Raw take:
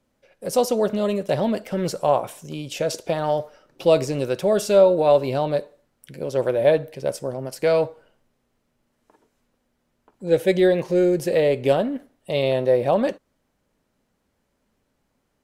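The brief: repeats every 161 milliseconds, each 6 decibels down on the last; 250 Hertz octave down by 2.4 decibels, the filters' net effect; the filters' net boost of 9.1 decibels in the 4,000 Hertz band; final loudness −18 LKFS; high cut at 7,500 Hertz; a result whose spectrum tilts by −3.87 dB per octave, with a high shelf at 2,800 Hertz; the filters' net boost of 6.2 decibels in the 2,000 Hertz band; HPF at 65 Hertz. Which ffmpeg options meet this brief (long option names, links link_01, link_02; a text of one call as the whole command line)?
ffmpeg -i in.wav -af "highpass=65,lowpass=7500,equalizer=frequency=250:width_type=o:gain=-4,equalizer=frequency=2000:width_type=o:gain=3,highshelf=frequency=2800:gain=8.5,equalizer=frequency=4000:width_type=o:gain=4,aecho=1:1:161|322|483|644|805|966:0.501|0.251|0.125|0.0626|0.0313|0.0157,volume=2.5dB" out.wav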